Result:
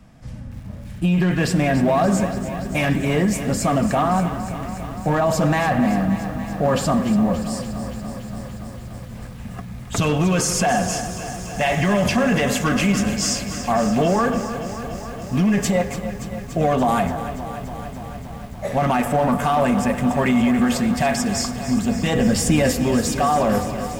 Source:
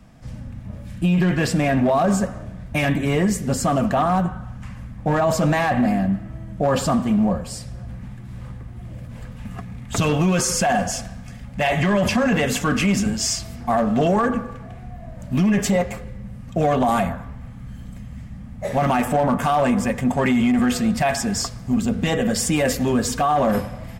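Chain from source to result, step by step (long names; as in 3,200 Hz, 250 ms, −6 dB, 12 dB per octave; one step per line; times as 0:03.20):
0:22.15–0:22.71: low-shelf EQ 210 Hz +7.5 dB
convolution reverb RT60 1.7 s, pre-delay 70 ms, DRR 20 dB
feedback echo at a low word length 287 ms, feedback 80%, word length 7 bits, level −11.5 dB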